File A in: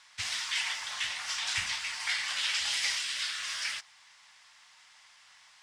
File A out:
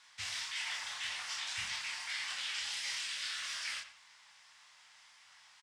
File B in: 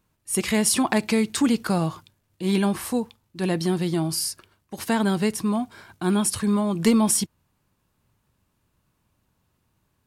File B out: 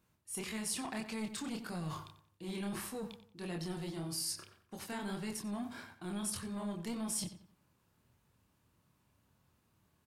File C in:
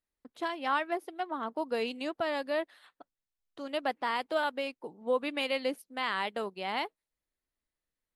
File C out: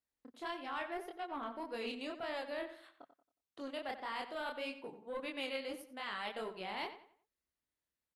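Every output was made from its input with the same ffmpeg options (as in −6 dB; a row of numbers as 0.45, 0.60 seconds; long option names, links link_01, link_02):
-filter_complex "[0:a]highpass=52,areverse,acompressor=threshold=-33dB:ratio=5,areverse,flanger=delay=22.5:depth=7.4:speed=1.7,acrossover=split=1500[link_01][link_02];[link_01]asoftclip=type=tanh:threshold=-36dB[link_03];[link_03][link_02]amix=inputs=2:normalize=0,asplit=2[link_04][link_05];[link_05]adelay=91,lowpass=frequency=3600:poles=1,volume=-11dB,asplit=2[link_06][link_07];[link_07]adelay=91,lowpass=frequency=3600:poles=1,volume=0.35,asplit=2[link_08][link_09];[link_09]adelay=91,lowpass=frequency=3600:poles=1,volume=0.35,asplit=2[link_10][link_11];[link_11]adelay=91,lowpass=frequency=3600:poles=1,volume=0.35[link_12];[link_04][link_06][link_08][link_10][link_12]amix=inputs=5:normalize=0"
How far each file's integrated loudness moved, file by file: −6.5, −17.0, −9.0 LU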